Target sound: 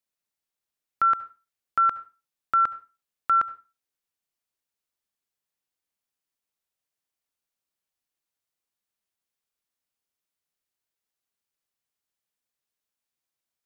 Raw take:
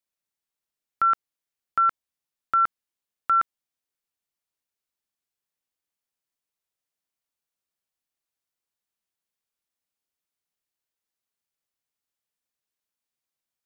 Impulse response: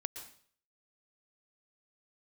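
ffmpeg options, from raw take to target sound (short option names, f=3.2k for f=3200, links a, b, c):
-filter_complex "[0:a]asplit=2[a][b];[1:a]atrim=start_sample=2205,asetrate=74970,aresample=44100[c];[b][c]afir=irnorm=-1:irlink=0,volume=1.5dB[d];[a][d]amix=inputs=2:normalize=0,volume=-4dB"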